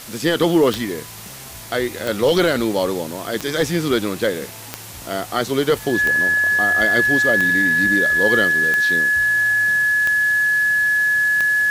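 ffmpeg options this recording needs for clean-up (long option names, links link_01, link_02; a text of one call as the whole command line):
ffmpeg -i in.wav -af "adeclick=threshold=4,bandreject=frequency=1700:width=30,afwtdn=0.016" out.wav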